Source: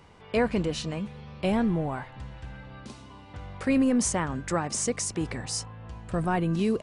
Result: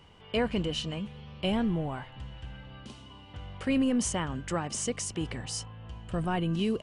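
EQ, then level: low shelf 160 Hz +4 dB; bell 3000 Hz +13 dB 0.22 oct; -4.5 dB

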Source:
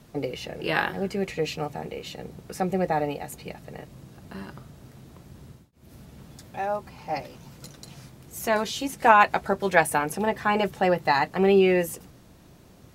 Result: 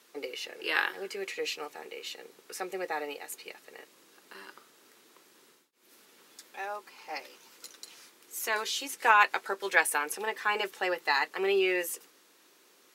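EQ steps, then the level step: HPF 410 Hz 24 dB/oct; bell 660 Hz -14 dB 0.88 oct; 0.0 dB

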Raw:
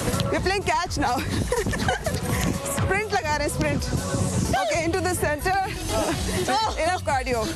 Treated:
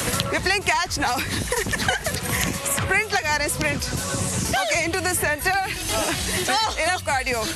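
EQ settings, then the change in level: bell 2200 Hz +8 dB 2 oct; high shelf 5000 Hz +8.5 dB; high shelf 10000 Hz +4 dB; -3.0 dB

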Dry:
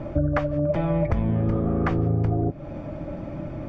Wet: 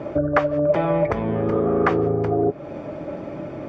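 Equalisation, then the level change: HPF 330 Hz 6 dB/oct; bell 420 Hz +9.5 dB 0.32 oct; dynamic EQ 1100 Hz, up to +4 dB, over -37 dBFS, Q 0.75; +4.5 dB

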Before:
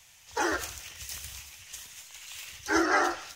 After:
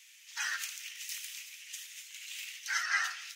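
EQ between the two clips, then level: ladder high-pass 1700 Hz, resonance 35%; +5.5 dB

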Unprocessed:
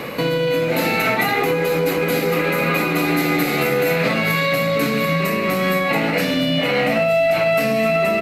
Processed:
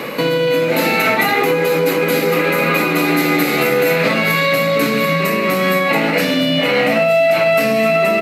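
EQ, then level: HPF 170 Hz 12 dB/oct; notch 720 Hz, Q 21; +4.0 dB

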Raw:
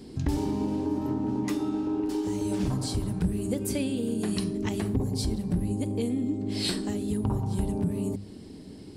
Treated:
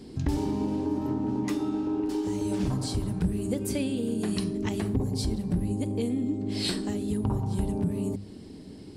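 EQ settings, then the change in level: high shelf 10000 Hz -4 dB; 0.0 dB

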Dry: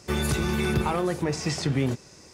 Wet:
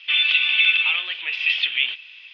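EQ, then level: resonant high-pass 2600 Hz, resonance Q 5.9; synth low-pass 3300 Hz, resonance Q 8.3; air absorption 330 m; +5.0 dB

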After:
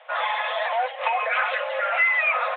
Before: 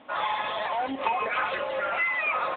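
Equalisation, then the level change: rippled Chebyshev high-pass 480 Hz, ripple 6 dB; +7.0 dB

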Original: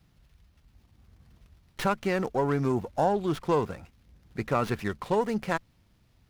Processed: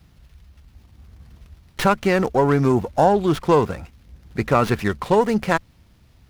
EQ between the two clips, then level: bell 68 Hz +9 dB 0.27 oct; +9.0 dB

